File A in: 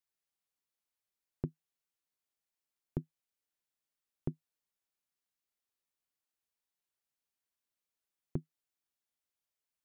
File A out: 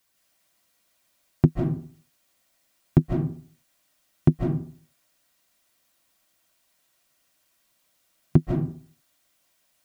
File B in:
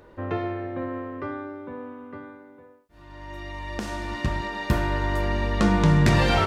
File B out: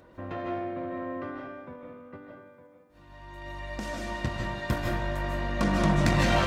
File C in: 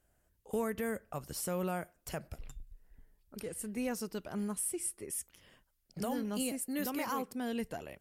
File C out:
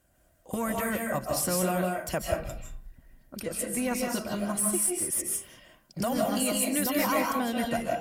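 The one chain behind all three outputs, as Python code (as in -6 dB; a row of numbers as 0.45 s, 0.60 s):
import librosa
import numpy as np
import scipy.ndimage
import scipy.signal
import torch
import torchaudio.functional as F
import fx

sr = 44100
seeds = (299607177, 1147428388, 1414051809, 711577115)

p1 = fx.diode_clip(x, sr, knee_db=-24.0)
p2 = fx.hpss(p1, sr, part='harmonic', gain_db=-6)
p3 = fx.level_steps(p2, sr, step_db=14)
p4 = p2 + (p3 * 10.0 ** (-2.5 / 20.0))
p5 = fx.notch_comb(p4, sr, f0_hz=430.0)
p6 = fx.rev_freeverb(p5, sr, rt60_s=0.47, hf_ratio=0.6, predelay_ms=115, drr_db=-0.5)
y = p6 * 10.0 ** (-30 / 20.0) / np.sqrt(np.mean(np.square(p6)))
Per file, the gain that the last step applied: +20.0 dB, -3.5 dB, +8.0 dB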